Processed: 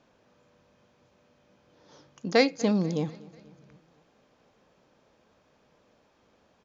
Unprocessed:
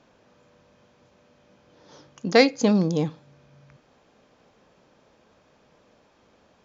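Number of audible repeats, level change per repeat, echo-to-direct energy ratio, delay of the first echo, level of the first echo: 3, −5.5 dB, −20.5 dB, 244 ms, −22.0 dB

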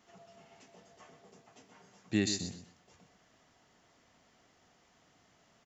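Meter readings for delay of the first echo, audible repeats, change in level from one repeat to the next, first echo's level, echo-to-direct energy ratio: 125 ms, 2, −13.5 dB, −10.0 dB, −10.0 dB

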